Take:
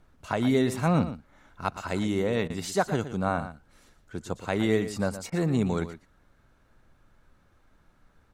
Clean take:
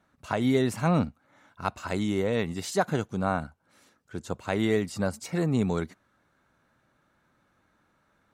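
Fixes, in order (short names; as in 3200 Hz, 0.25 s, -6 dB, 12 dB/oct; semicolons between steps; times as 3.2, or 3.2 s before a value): interpolate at 2.48/5.3, 19 ms; expander -54 dBFS, range -21 dB; inverse comb 0.118 s -12 dB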